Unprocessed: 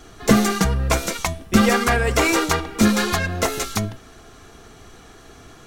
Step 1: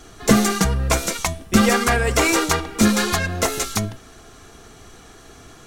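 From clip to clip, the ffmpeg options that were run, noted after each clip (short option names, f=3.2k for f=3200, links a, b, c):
-af "equalizer=f=8.6k:w=0.75:g=4"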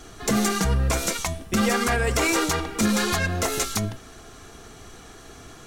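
-af "alimiter=limit=-12.5dB:level=0:latency=1:release=107"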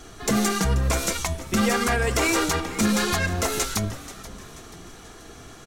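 -filter_complex "[0:a]asplit=5[a][b][c][d][e];[b]adelay=483,afreqshift=-140,volume=-16dB[f];[c]adelay=966,afreqshift=-280,volume=-22.6dB[g];[d]adelay=1449,afreqshift=-420,volume=-29.1dB[h];[e]adelay=1932,afreqshift=-560,volume=-35.7dB[i];[a][f][g][h][i]amix=inputs=5:normalize=0"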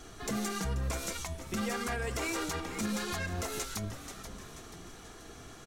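-af "alimiter=limit=-19.5dB:level=0:latency=1:release=315,volume=-5.5dB"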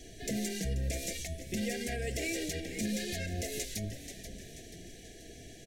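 -af "asuperstop=centerf=1100:order=12:qfactor=1.1"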